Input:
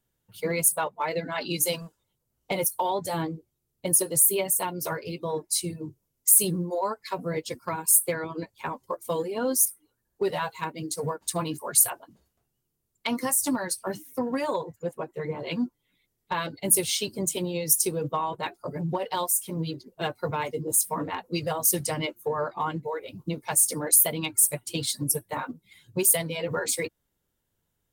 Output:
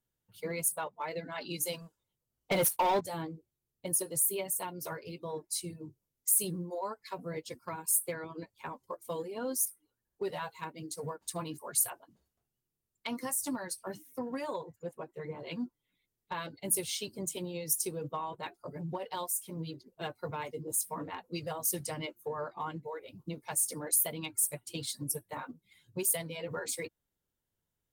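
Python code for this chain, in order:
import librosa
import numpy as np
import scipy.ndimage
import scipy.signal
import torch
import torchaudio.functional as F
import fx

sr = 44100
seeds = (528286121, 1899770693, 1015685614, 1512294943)

y = fx.leveller(x, sr, passes=3, at=(2.51, 3.01))
y = y * 10.0 ** (-9.0 / 20.0)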